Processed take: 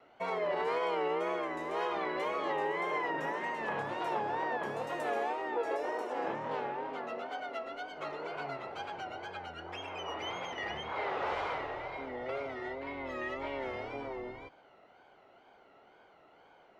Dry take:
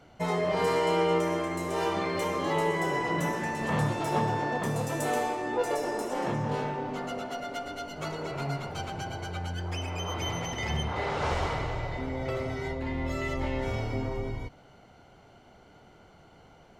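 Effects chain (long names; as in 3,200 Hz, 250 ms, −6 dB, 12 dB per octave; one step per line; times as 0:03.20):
brickwall limiter −20 dBFS, peak gain reduction 5.5 dB
three-way crossover with the lows and the highs turned down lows −17 dB, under 310 Hz, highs −18 dB, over 3,600 Hz
tape wow and flutter 110 cents
low-shelf EQ 160 Hz −3.5 dB
level −2.5 dB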